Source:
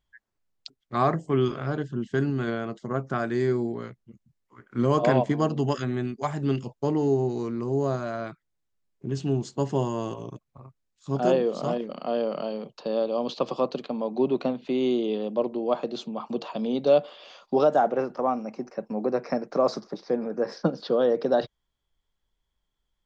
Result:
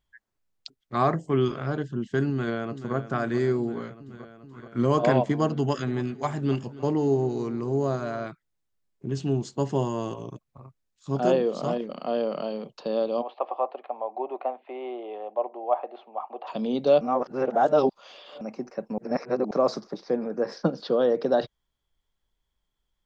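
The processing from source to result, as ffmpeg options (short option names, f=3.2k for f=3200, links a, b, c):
-filter_complex "[0:a]asplit=2[a][b];[b]afade=t=in:st=2.28:d=0.01,afade=t=out:st=2.95:d=0.01,aecho=0:1:430|860|1290|1720|2150|2580|3010|3440|3870|4300|4730|5160:0.251189|0.200951|0.160761|0.128609|0.102887|0.0823095|0.0658476|0.0526781|0.0421425|0.033714|0.0269712|0.0215769[c];[a][c]amix=inputs=2:normalize=0,asplit=3[d][e][f];[d]afade=t=out:st=5.77:d=0.02[g];[e]aecho=1:1:279|558|837:0.126|0.0453|0.0163,afade=t=in:st=5.77:d=0.02,afade=t=out:st=8.26:d=0.02[h];[f]afade=t=in:st=8.26:d=0.02[i];[g][h][i]amix=inputs=3:normalize=0,asplit=3[j][k][l];[j]afade=t=out:st=13.21:d=0.02[m];[k]highpass=f=470:w=0.5412,highpass=f=470:w=1.3066,equalizer=f=470:t=q:w=4:g=-7,equalizer=f=760:t=q:w=4:g=9,equalizer=f=1.5k:t=q:w=4:g=-7,lowpass=f=2.1k:w=0.5412,lowpass=f=2.1k:w=1.3066,afade=t=in:st=13.21:d=0.02,afade=t=out:st=16.46:d=0.02[n];[l]afade=t=in:st=16.46:d=0.02[o];[m][n][o]amix=inputs=3:normalize=0,asplit=5[p][q][r][s][t];[p]atrim=end=17.012[u];[q]atrim=start=17.008:end=18.412,asetpts=PTS-STARTPTS,areverse[v];[r]atrim=start=18.408:end=18.982[w];[s]atrim=start=18.978:end=19.512,asetpts=PTS-STARTPTS,areverse[x];[t]atrim=start=19.508[y];[u][v]acrossfade=d=0.004:c1=hsin:c2=hsin[z];[z][w]acrossfade=d=0.004:c1=hsin:c2=hsin[aa];[aa][x]acrossfade=d=0.004:c1=hsin:c2=hsin[ab];[ab][y]acrossfade=d=0.004:c1=hsin:c2=hsin"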